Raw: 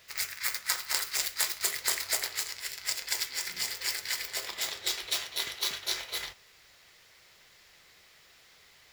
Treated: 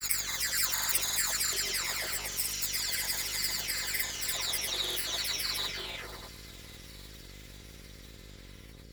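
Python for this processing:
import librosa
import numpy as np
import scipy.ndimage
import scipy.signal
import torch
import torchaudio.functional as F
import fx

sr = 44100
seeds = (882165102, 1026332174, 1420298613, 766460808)

y = fx.spec_delay(x, sr, highs='early', ms=677)
y = fx.high_shelf(y, sr, hz=8700.0, db=5.5)
y = fx.echo_swing(y, sr, ms=839, ratio=3, feedback_pct=69, wet_db=-21.0)
y = fx.dmg_buzz(y, sr, base_hz=50.0, harmonics=11, level_db=-52.0, tilt_db=-5, odd_only=False)
y = fx.granulator(y, sr, seeds[0], grain_ms=100.0, per_s=20.0, spray_ms=100.0, spread_st=0)
y = fx.vibrato(y, sr, rate_hz=0.54, depth_cents=13.0)
y = y * 10.0 ** (3.0 / 20.0)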